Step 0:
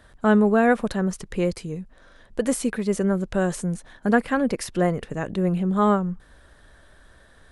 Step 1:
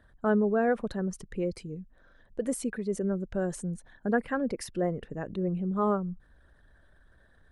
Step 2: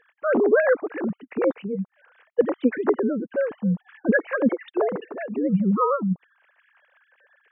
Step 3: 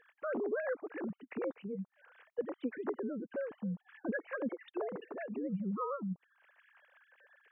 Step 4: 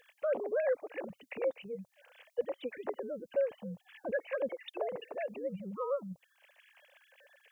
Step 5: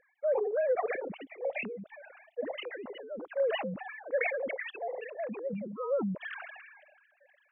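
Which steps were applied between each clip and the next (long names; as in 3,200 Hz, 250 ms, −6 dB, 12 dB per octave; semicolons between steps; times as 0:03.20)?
spectral envelope exaggerated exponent 1.5; level −7.5 dB
three sine waves on the formant tracks; level +7 dB
downward compressor 2 to 1, threshold −40 dBFS, peak gain reduction 15 dB; level −4 dB
drawn EQ curve 120 Hz 0 dB, 240 Hz −11 dB, 370 Hz −8 dB, 550 Hz +7 dB, 1,400 Hz −7 dB, 2,400 Hz +7 dB, 6,100 Hz +15 dB; level +1.5 dB
three sine waves on the formant tracks; level that may fall only so fast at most 36 dB per second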